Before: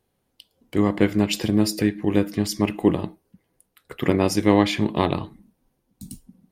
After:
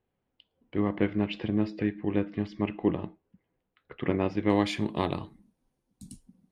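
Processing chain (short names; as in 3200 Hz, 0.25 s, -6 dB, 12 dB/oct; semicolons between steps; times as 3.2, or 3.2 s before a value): LPF 3100 Hz 24 dB/oct, from 4.5 s 11000 Hz; gain -7.5 dB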